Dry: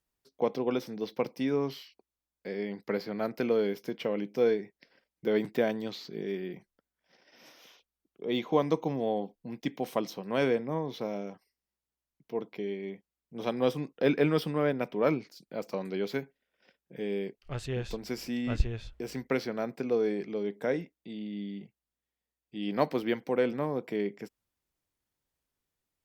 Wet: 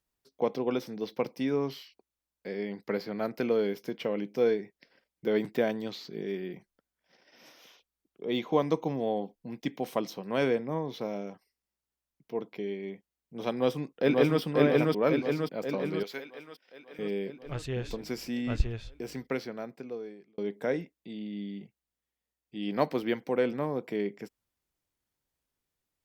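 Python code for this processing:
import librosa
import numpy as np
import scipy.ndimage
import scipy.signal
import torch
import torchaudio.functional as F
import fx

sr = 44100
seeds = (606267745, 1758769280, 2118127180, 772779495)

y = fx.echo_throw(x, sr, start_s=13.53, length_s=0.87, ms=540, feedback_pct=60, wet_db=-0.5)
y = fx.highpass(y, sr, hz=1000.0, slope=6, at=(16.03, 16.99))
y = fx.edit(y, sr, fx.fade_out_span(start_s=18.91, length_s=1.47), tone=tone)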